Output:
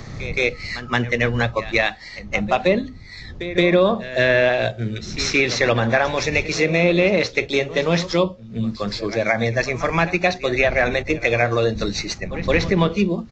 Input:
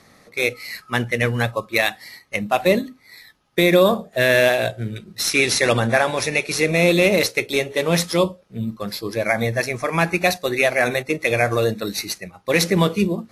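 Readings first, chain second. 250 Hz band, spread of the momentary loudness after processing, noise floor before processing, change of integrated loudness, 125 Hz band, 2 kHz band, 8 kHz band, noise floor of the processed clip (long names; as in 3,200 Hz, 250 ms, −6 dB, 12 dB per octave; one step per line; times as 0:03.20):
+0.5 dB, 9 LU, −53 dBFS, 0.0 dB, +1.0 dB, 0.0 dB, −6.0 dB, −38 dBFS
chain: wind on the microphone 100 Hz −35 dBFS
treble cut that deepens with the level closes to 2,900 Hz, closed at −11.5 dBFS
backwards echo 172 ms −17 dB
downsampling to 16,000 Hz
multiband upward and downward compressor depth 40%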